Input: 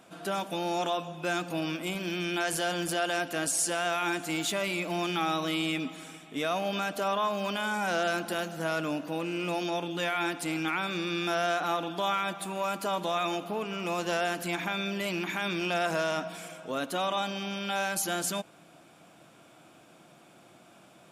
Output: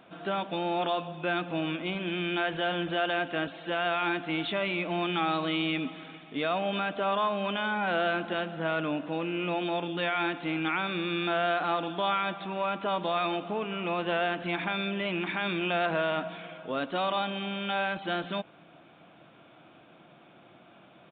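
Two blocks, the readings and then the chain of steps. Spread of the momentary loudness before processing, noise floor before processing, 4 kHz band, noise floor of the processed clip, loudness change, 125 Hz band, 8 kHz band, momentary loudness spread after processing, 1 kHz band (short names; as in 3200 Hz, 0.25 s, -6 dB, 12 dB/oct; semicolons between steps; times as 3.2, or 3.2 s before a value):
5 LU, -57 dBFS, 0.0 dB, -56 dBFS, +0.5 dB, +1.0 dB, under -40 dB, 5 LU, +1.0 dB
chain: downsampling 8000 Hz; gain +1 dB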